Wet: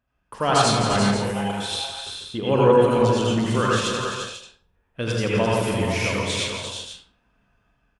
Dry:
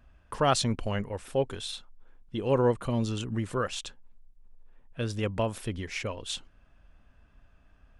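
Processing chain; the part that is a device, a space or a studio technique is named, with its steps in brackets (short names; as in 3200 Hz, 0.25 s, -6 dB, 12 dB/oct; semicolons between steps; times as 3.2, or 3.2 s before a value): gate -47 dBFS, range -11 dB; far laptop microphone (reverb RT60 0.50 s, pre-delay 75 ms, DRR -4 dB; HPF 130 Hz 6 dB/oct; AGC gain up to 7 dB); 1.31–1.72 elliptic high-pass 680 Hz, stop band 40 dB; doubler 45 ms -12 dB; tapped delay 0.168/0.345/0.49 s -8.5/-6.5/-11 dB; gain -2 dB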